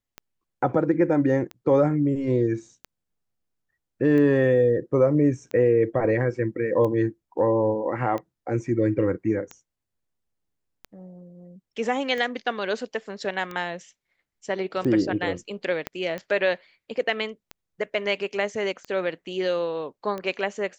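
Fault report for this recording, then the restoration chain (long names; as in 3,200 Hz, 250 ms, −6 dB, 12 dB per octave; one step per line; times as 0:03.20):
scratch tick 45 rpm −20 dBFS
0:15.87: click −14 dBFS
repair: click removal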